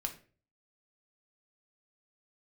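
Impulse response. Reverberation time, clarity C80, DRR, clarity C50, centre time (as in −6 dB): 0.40 s, 16.5 dB, 3.5 dB, 11.5 dB, 10 ms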